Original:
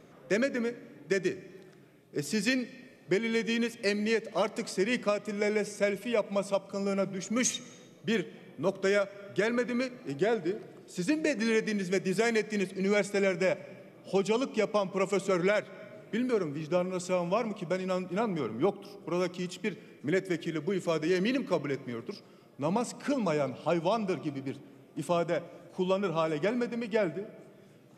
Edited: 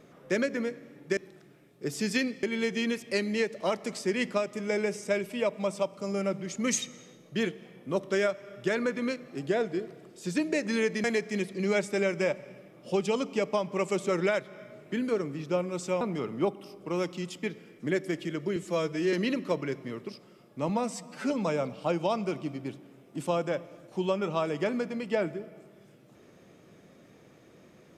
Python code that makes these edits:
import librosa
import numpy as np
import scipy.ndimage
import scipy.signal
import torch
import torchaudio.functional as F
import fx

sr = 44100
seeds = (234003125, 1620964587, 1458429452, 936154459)

y = fx.edit(x, sr, fx.cut(start_s=1.17, length_s=0.32),
    fx.cut(start_s=2.75, length_s=0.4),
    fx.cut(start_s=11.76, length_s=0.49),
    fx.cut(start_s=17.22, length_s=1.0),
    fx.stretch_span(start_s=20.77, length_s=0.38, factor=1.5),
    fx.stretch_span(start_s=22.71, length_s=0.41, factor=1.5), tone=tone)